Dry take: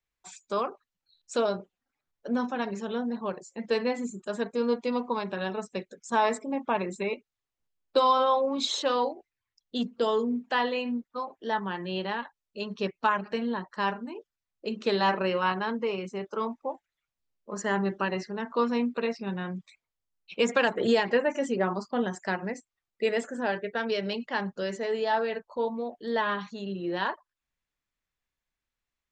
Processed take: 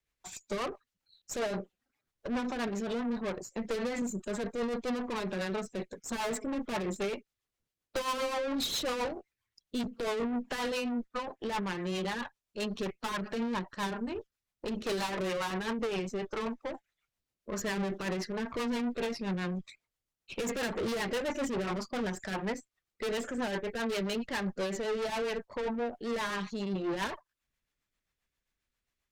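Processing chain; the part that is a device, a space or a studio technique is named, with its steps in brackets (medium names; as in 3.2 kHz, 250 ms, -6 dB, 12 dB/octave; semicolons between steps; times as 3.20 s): 3.44–4.02 s: high-pass 100 Hz 24 dB/octave; overdriven rotary cabinet (valve stage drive 37 dB, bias 0.6; rotary cabinet horn 7.5 Hz); trim +8 dB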